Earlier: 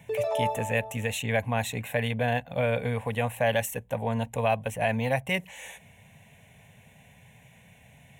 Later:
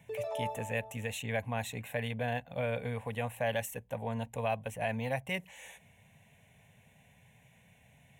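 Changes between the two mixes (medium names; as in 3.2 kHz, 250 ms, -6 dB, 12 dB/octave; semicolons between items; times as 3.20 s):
speech -7.5 dB; background -9.0 dB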